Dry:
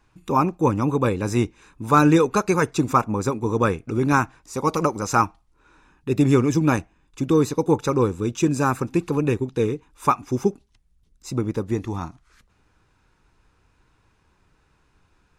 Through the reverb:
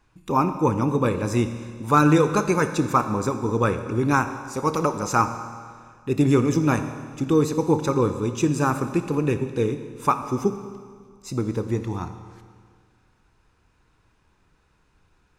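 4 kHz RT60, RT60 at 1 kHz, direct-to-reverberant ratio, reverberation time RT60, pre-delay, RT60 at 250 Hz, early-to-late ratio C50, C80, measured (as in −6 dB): 1.8 s, 1.9 s, 8.5 dB, 1.9 s, 26 ms, 1.9 s, 9.5 dB, 11.0 dB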